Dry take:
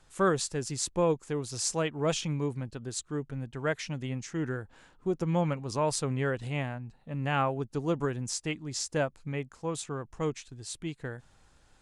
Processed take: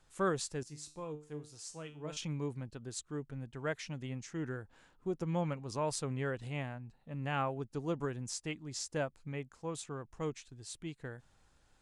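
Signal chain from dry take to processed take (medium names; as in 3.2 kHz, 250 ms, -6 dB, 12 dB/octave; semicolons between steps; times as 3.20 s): 0.63–2.17 s: feedback comb 150 Hz, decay 0.37 s, harmonics all, mix 80%; trim -6.5 dB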